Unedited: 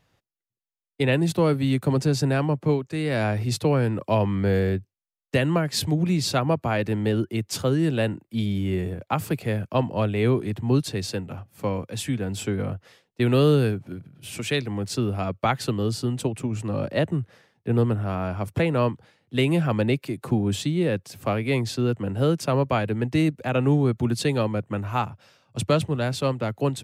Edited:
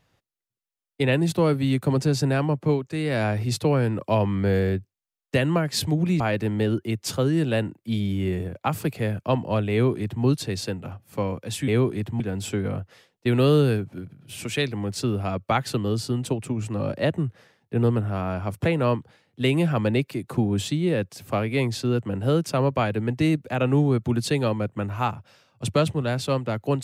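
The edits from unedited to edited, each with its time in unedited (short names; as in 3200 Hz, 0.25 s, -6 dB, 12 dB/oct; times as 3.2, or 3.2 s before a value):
6.2–6.66 cut
10.18–10.7 copy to 12.14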